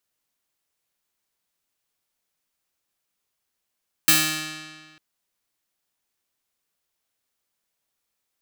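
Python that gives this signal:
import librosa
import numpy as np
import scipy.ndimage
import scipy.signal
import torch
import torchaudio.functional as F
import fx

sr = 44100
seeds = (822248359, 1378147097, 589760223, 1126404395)

y = fx.pluck(sr, length_s=0.9, note=51, decay_s=1.65, pick=0.31, brightness='bright')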